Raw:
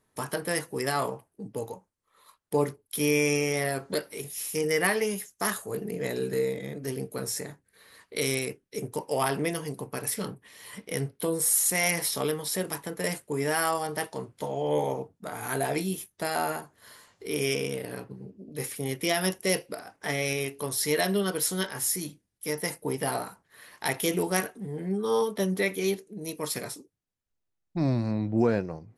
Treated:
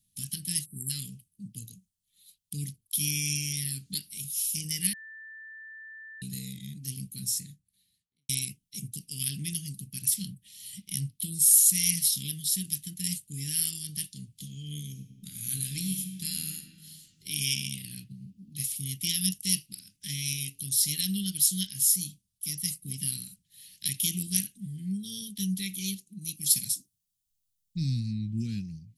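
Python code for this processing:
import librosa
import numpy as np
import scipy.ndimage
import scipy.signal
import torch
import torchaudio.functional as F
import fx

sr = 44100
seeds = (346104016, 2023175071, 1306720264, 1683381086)

y = fx.spec_erase(x, sr, start_s=0.66, length_s=0.24, low_hz=460.0, high_hz=7400.0)
y = fx.studio_fade_out(y, sr, start_s=7.2, length_s=1.09)
y = fx.reverb_throw(y, sr, start_s=14.91, length_s=1.65, rt60_s=2.0, drr_db=6.0)
y = fx.peak_eq(y, sr, hz=2200.0, db=5.0, octaves=2.4, at=(17.26, 18.63))
y = fx.high_shelf(y, sr, hz=4700.0, db=7.5, at=(26.41, 28.0))
y = fx.edit(y, sr, fx.bleep(start_s=4.93, length_s=1.29, hz=1770.0, db=-20.5), tone=tone)
y = scipy.signal.sosfilt(scipy.signal.ellip(3, 1.0, 80, [190.0, 3100.0], 'bandstop', fs=sr, output='sos'), y)
y = fx.high_shelf(y, sr, hz=4300.0, db=6.5)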